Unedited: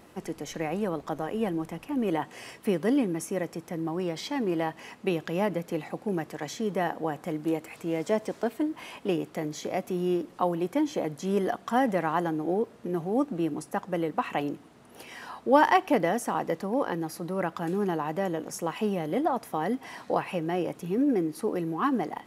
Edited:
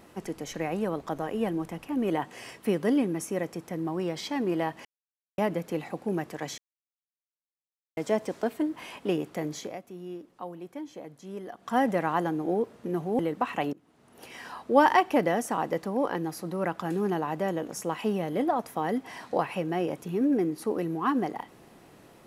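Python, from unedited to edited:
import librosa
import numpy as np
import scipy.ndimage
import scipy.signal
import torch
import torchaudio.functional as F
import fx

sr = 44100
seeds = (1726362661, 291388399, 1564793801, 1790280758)

y = fx.edit(x, sr, fx.silence(start_s=4.85, length_s=0.53),
    fx.silence(start_s=6.58, length_s=1.39),
    fx.fade_down_up(start_s=9.57, length_s=2.21, db=-12.5, fade_s=0.22),
    fx.cut(start_s=13.19, length_s=0.77),
    fx.fade_in_from(start_s=14.5, length_s=0.6, floor_db=-23.5), tone=tone)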